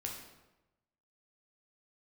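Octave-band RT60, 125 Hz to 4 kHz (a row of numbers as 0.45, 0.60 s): 1.2, 1.0, 1.0, 1.0, 0.85, 0.70 s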